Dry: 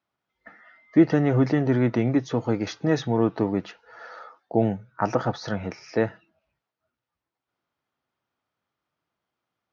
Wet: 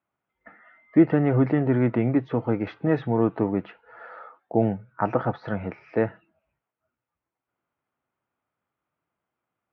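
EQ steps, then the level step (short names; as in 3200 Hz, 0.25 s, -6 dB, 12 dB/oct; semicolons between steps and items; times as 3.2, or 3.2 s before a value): LPF 2600 Hz 24 dB/oct; bell 1800 Hz -2.5 dB 0.25 oct; 0.0 dB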